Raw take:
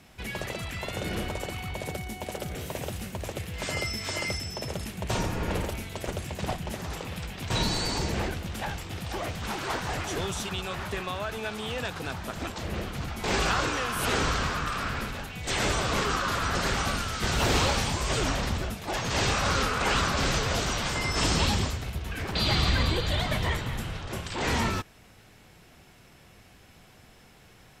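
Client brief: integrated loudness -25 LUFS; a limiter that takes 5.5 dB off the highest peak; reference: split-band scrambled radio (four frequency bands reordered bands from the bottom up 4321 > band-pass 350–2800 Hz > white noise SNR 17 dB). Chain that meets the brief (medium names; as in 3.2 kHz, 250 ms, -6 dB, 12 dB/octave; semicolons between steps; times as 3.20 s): peak limiter -17 dBFS; four frequency bands reordered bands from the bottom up 4321; band-pass 350–2800 Hz; white noise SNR 17 dB; trim +9.5 dB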